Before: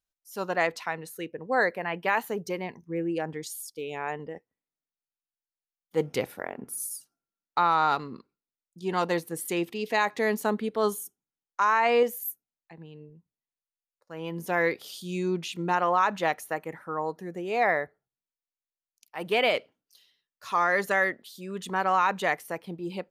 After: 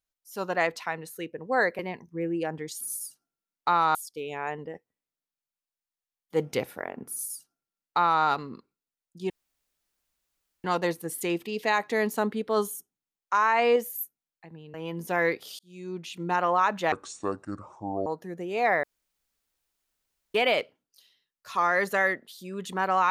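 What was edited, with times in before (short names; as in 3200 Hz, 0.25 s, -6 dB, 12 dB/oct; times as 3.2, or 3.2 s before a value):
1.79–2.54 cut
6.71–7.85 copy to 3.56
8.91 insert room tone 1.34 s
13.01–14.13 cut
14.98–15.8 fade in
16.31–17.03 speed 63%
17.8–19.31 room tone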